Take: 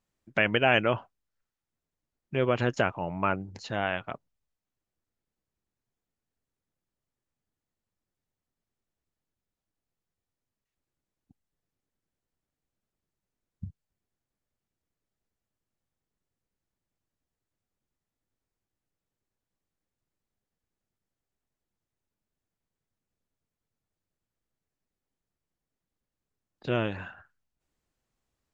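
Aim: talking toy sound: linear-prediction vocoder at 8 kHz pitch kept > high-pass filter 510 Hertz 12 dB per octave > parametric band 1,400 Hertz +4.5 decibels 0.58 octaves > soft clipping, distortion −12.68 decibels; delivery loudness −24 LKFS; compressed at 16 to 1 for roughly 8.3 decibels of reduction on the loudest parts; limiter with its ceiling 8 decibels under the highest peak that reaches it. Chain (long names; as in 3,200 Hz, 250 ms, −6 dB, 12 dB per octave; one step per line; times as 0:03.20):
downward compressor 16 to 1, threshold −26 dBFS
brickwall limiter −19.5 dBFS
linear-prediction vocoder at 8 kHz pitch kept
high-pass filter 510 Hz 12 dB per octave
parametric band 1,400 Hz +4.5 dB 0.58 octaves
soft clipping −27.5 dBFS
level +15.5 dB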